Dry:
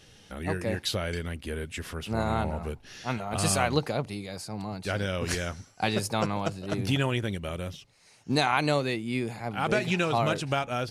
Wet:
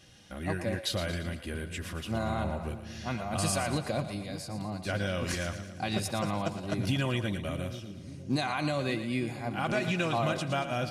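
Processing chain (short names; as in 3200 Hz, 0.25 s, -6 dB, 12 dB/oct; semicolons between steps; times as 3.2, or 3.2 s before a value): limiter -17 dBFS, peak gain reduction 7 dB; notch comb 440 Hz; on a send: split-band echo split 410 Hz, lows 0.59 s, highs 0.115 s, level -10.5 dB; on the sum: gain -1 dB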